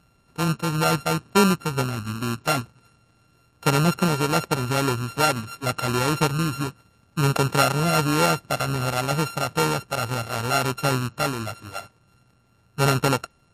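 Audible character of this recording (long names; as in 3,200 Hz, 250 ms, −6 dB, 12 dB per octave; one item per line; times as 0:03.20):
a buzz of ramps at a fixed pitch in blocks of 32 samples
MP3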